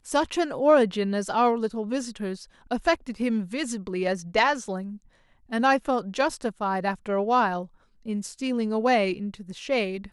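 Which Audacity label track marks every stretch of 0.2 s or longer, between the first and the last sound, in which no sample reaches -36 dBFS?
2.440000	2.710000	silence
4.960000	5.520000	silence
7.650000	8.060000	silence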